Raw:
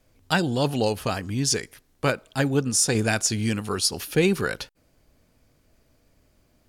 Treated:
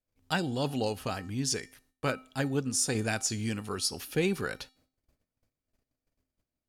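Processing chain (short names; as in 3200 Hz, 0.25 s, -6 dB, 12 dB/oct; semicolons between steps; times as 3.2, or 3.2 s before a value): gate -58 dBFS, range -20 dB; resonator 260 Hz, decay 0.42 s, harmonics odd, mix 60%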